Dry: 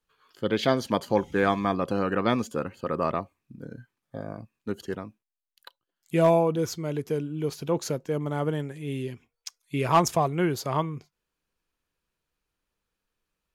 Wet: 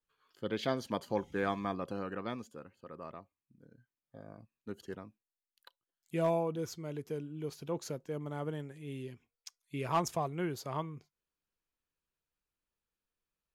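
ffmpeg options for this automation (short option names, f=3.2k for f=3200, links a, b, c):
-af "volume=-1dB,afade=t=out:st=1.65:d=0.96:silence=0.334965,afade=t=in:st=3.75:d=1.11:silence=0.354813"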